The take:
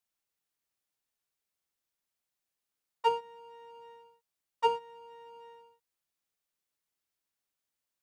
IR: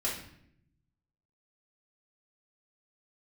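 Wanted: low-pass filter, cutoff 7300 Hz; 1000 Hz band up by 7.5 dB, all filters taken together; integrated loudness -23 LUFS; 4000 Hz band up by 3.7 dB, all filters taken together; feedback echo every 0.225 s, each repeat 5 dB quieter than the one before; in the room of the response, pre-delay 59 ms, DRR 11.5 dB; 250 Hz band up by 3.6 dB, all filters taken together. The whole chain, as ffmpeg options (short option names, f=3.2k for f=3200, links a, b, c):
-filter_complex "[0:a]lowpass=7.3k,equalizer=f=250:t=o:g=4.5,equalizer=f=1k:t=o:g=7.5,equalizer=f=4k:t=o:g=6,aecho=1:1:225|450|675|900|1125|1350|1575:0.562|0.315|0.176|0.0988|0.0553|0.031|0.0173,asplit=2[a][b];[1:a]atrim=start_sample=2205,adelay=59[c];[b][c]afir=irnorm=-1:irlink=0,volume=-17dB[d];[a][d]amix=inputs=2:normalize=0,volume=5dB"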